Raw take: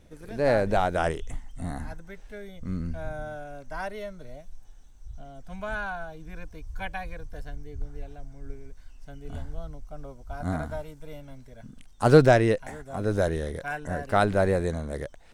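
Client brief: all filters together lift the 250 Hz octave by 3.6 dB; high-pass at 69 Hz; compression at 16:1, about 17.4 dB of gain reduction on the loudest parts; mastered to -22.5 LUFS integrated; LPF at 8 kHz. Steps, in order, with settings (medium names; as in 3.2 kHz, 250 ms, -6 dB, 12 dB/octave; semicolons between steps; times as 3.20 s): high-pass 69 Hz; low-pass 8 kHz; peaking EQ 250 Hz +5 dB; compression 16:1, threshold -25 dBFS; trim +12.5 dB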